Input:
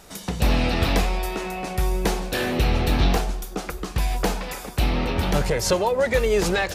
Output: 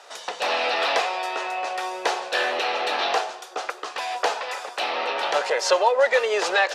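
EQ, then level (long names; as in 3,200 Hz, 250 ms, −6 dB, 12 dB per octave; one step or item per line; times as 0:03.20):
high-pass filter 540 Hz 24 dB per octave
high-frequency loss of the air 100 metres
notch filter 2,200 Hz, Q 15
+5.5 dB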